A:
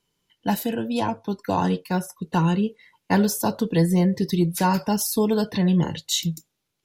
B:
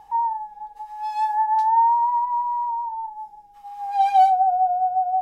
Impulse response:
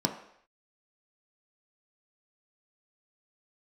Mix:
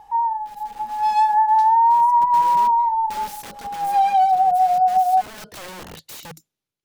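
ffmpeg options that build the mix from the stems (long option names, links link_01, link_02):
-filter_complex "[0:a]alimiter=limit=-20dB:level=0:latency=1:release=77,aeval=exprs='(mod(20*val(0)+1,2)-1)/20':channel_layout=same,volume=-13.5dB,afade=type=in:start_time=1.76:duration=0.46:silence=0.298538[link_01];[1:a]volume=1.5dB[link_02];[link_01][link_02]amix=inputs=2:normalize=0,dynaudnorm=framelen=250:gausssize=5:maxgain=8dB,alimiter=limit=-10.5dB:level=0:latency=1:release=272"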